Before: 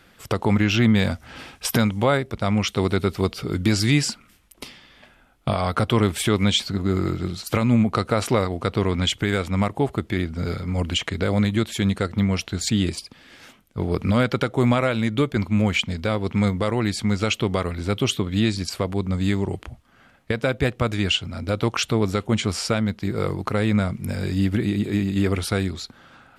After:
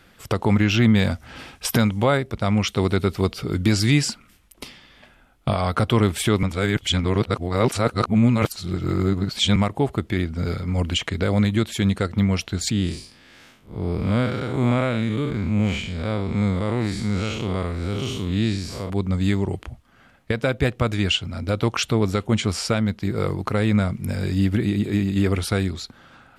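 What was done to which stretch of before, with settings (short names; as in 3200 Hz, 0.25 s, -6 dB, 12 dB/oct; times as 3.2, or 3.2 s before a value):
6.43–9.56 reverse
12.71–18.9 time blur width 0.149 s
whole clip: low shelf 130 Hz +3 dB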